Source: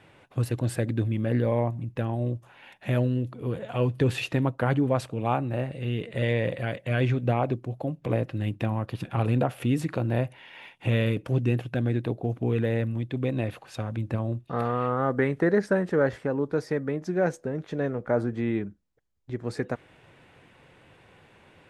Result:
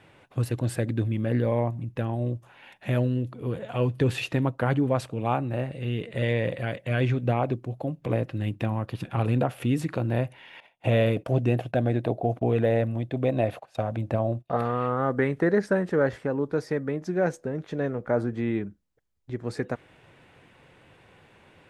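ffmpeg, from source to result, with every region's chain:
-filter_complex "[0:a]asettb=1/sr,asplit=3[a][b][c];[a]atrim=end=10.604[d];[b]atrim=start=10.6:end=14.57,asetpts=PTS-STARTPTS,afade=t=in:d=0.004:c=qsin,afade=t=out:st=3.966:d=0.004:c=qsin,equalizer=f=660:t=o:w=0.64:g=13,agate=range=-16dB:threshold=-43dB:ratio=16:release=100:detection=peak[e];[c]atrim=start=14.566[f];[d][e]acrossfade=d=0.004:c1=hsin:c2=qsin[g];[g][f]acrossfade=d=0.004:c1=qsin:c2=hsin"

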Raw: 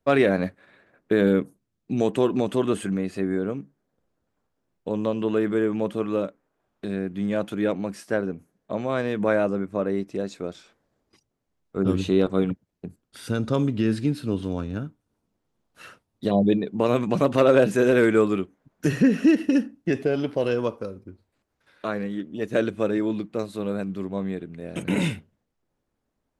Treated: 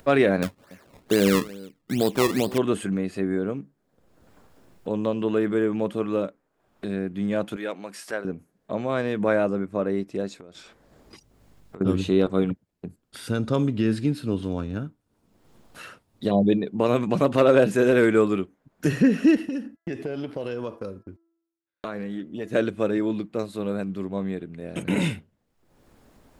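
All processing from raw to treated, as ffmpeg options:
-filter_complex "[0:a]asettb=1/sr,asplit=3[a][b][c];[a]atrim=end=0.424[d];[b]atrim=start=0.42:end=2.58,asetpts=PTS-STARTPTS,afade=t=in:d=0.004:c=qsin,afade=t=out:st=2.156:d=0.004:c=qsin,aecho=1:1:285:0.0944,atrim=end_sample=95256,acrusher=samples=20:mix=1:aa=0.000001:lfo=1:lforange=20:lforate=2.3[e];[c]atrim=start=2.576[f];[d][e]acrossfade=d=0.004:c1=hsin:c2=qsin[g];[g][f]acrossfade=d=0.004:c1=qsin:c2=hsin,asettb=1/sr,asplit=3[h][i][j];[h]atrim=end=7.564[k];[i]atrim=start=7.56:end=8.25,asetpts=PTS-STARTPTS,afade=t=in:d=0.004:c=qsin,afade=t=out:st=0.686:d=0.004:c=qsin,highpass=f=930:p=1,acompressor=mode=upward:threshold=-34dB:ratio=2.5:attack=3.2:release=140:knee=2.83:detection=peak[l];[j]atrim=start=8.246[m];[k][l]acrossfade=d=0.004:c1=hsin:c2=qsin[n];[n][m]acrossfade=d=0.004:c1=qsin:c2=hsin,asettb=1/sr,asplit=3[o][p][q];[o]atrim=end=10.384[r];[p]atrim=start=10.38:end=11.81,asetpts=PTS-STARTPTS,afade=t=in:d=0.004:c=qsin,afade=t=out:st=1.426:d=0.004:c=qsin,acompressor=threshold=-40dB:ratio=16:attack=3.2:release=140:knee=1:detection=peak,aeval=exprs='val(0)+0.000112*(sin(2*PI*50*n/s)+sin(2*PI*2*50*n/s)/2+sin(2*PI*3*50*n/s)/3+sin(2*PI*4*50*n/s)/4+sin(2*PI*5*50*n/s)/5)':c=same[s];[q]atrim=start=11.806[t];[r][s]acrossfade=d=0.004:c1=hsin:c2=qsin[u];[u][t]acrossfade=d=0.004:c1=qsin:c2=hsin,asettb=1/sr,asplit=3[v][w][x];[v]atrim=end=19.374[y];[w]atrim=start=19.37:end=22.51,asetpts=PTS-STARTPTS,afade=t=in:d=0.004:c=qsin,afade=t=out:st=3.136:d=0.004:c=qsin,agate=range=-59dB:threshold=-50dB:ratio=16:release=100:detection=peak,bandreject=f=333.2:t=h:w=4,bandreject=f=666.4:t=h:w=4,bandreject=f=999.6:t=h:w=4,bandreject=f=1.3328k:t=h:w=4,bandreject=f=1.666k:t=h:w=4,bandreject=f=1.9992k:t=h:w=4,acompressor=threshold=-27dB:ratio=4:attack=3.2:release=140:knee=1:detection=peak[z];[x]atrim=start=22.506[aa];[y][z]acrossfade=d=0.004:c1=hsin:c2=qsin[ab];[ab][aa]acrossfade=d=0.004:c1=qsin:c2=hsin,bandreject=f=6k:w=23,acompressor=mode=upward:threshold=-36dB:ratio=2.5"

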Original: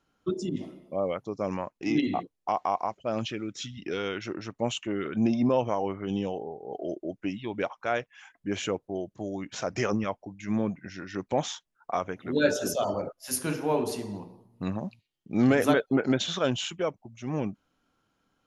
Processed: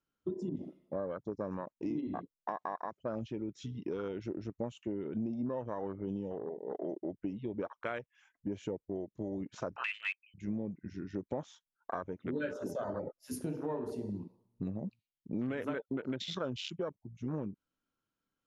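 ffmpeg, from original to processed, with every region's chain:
-filter_complex "[0:a]asettb=1/sr,asplit=3[a][b][c];[a]atrim=end=9.764[d];[b]atrim=start=9.76:end=10.34,asetpts=PTS-STARTPTS,afade=t=in:d=0.004:c=qsin,afade=t=out:st=0.576:d=0.004:c=qsin,lowshelf=f=460:t=q:w=3:g=-10,lowpass=f=2.7k:t=q:w=0.5098,lowpass=f=2.7k:t=q:w=0.6013,lowpass=f=2.7k:t=q:w=0.9,lowpass=f=2.7k:t=q:w=2.563,afreqshift=-3200[e];[c]atrim=start=10.336[f];[d][e]acrossfade=d=0.004:c1=hsin:c2=qsin[g];[g][f]acrossfade=d=0.004:c1=qsin:c2=hsin,afwtdn=0.0224,equalizer=f=750:w=4.2:g=-7,acompressor=threshold=-35dB:ratio=6,volume=1dB"

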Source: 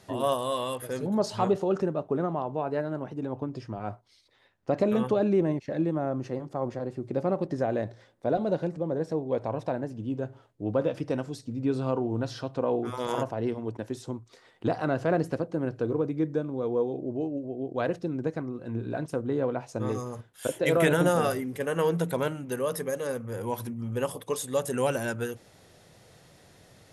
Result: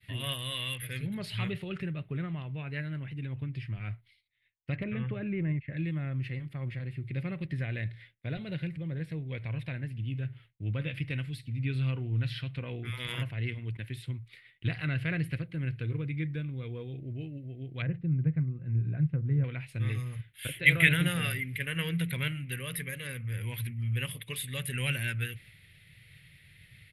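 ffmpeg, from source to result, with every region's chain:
-filter_complex "[0:a]asettb=1/sr,asplit=3[a][b][c];[a]atrim=end=4.764[d];[b]atrim=start=4.76:end=5.77,asetpts=PTS-STARTPTS,afade=t=in:d=0.004:c=qsin,afade=t=out:st=1.006:d=0.004:c=qsin,lowpass=1.8k,aemphasis=mode=reproduction:type=50fm,asoftclip=type=hard:threshold=-13.5dB[e];[c]atrim=start=5.766[f];[d][e]acrossfade=d=0.004:c1=hsin:c2=qsin[g];[g][f]acrossfade=d=0.004:c1=qsin:c2=hsin,asettb=1/sr,asplit=3[h][i][j];[h]atrim=end=17.824[k];[i]atrim=start=17.82:end=19.44,asetpts=PTS-STARTPTS,afade=t=in:d=0.004:c=qsin,afade=t=out:st=1.616:d=0.004:c=qsin,lowpass=1k,equalizer=f=150:w=3:g=9[l];[j]atrim=start=19.436[m];[k][l]acrossfade=d=0.004:c1=hsin:c2=qsin[n];[n][m]acrossfade=d=0.004:c1=qsin:c2=hsin,agate=range=-33dB:threshold=-52dB:ratio=3:detection=peak,firequalizer=gain_entry='entry(140,0);entry(220,-16);entry(400,-21);entry(810,-28);entry(2100,8);entry(4100,-5);entry(6100,-26);entry(9900,-4)':delay=0.05:min_phase=1,volume=5dB"

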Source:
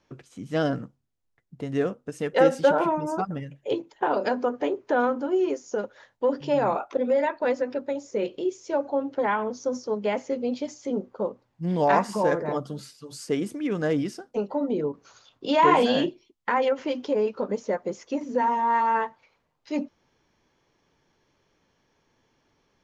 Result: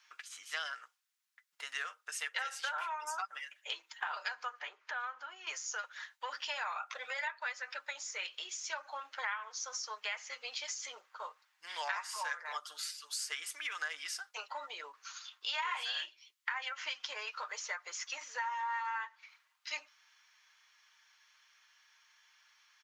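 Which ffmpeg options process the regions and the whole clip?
-filter_complex "[0:a]asettb=1/sr,asplit=3[a][b][c];[a]atrim=end=4.594[d];[b]atrim=start=4.59:end=5.47,asetpts=PTS-STARTPTS,afade=t=in:d=0.004:c=qsin,afade=t=out:st=0.876:d=0.004:c=qsin,aemphasis=mode=reproduction:type=50fm,acompressor=threshold=-42dB:ratio=1.5:attack=3.2:release=140:knee=1:detection=peak[e];[c]atrim=start=5.466[f];[d][e]acrossfade=d=0.004:c1=hsin:c2=qsin[g];[g][f]acrossfade=d=0.004:c1=qsin:c2=hsin,highpass=f=1.3k:w=0.5412,highpass=f=1.3k:w=1.3066,aecho=1:1:6.5:0.36,acompressor=threshold=-43dB:ratio=5,volume=7dB"

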